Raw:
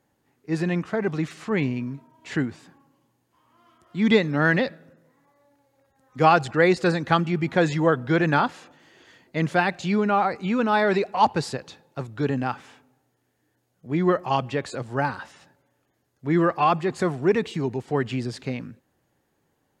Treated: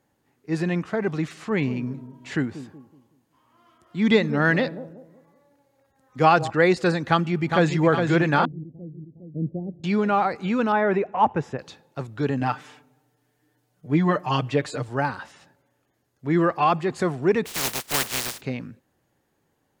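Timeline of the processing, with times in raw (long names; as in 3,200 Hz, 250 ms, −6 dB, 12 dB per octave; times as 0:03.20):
0:01.41–0:06.50: bucket-brigade delay 186 ms, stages 1,024, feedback 34%, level −12.5 dB
0:07.08–0:07.81: delay throw 410 ms, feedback 60%, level −5.5 dB
0:08.45–0:09.84: Gaussian smoothing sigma 23 samples
0:10.72–0:11.59: moving average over 10 samples
0:12.40–0:14.89: comb filter 6.7 ms, depth 83%
0:17.45–0:18.40: compressing power law on the bin magnitudes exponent 0.16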